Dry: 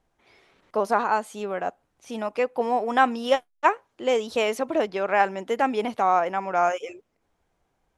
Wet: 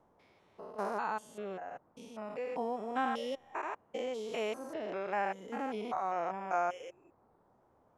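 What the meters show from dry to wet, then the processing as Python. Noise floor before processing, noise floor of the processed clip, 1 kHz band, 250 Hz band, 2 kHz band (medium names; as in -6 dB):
-74 dBFS, -69 dBFS, -12.5 dB, -11.0 dB, -13.5 dB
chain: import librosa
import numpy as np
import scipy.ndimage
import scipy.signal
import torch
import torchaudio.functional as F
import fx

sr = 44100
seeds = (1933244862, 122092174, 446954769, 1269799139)

y = fx.spec_steps(x, sr, hold_ms=200)
y = fx.dereverb_blind(y, sr, rt60_s=0.81)
y = fx.dmg_noise_band(y, sr, seeds[0], low_hz=68.0, high_hz=1000.0, level_db=-62.0)
y = F.gain(torch.from_numpy(y), -7.0).numpy()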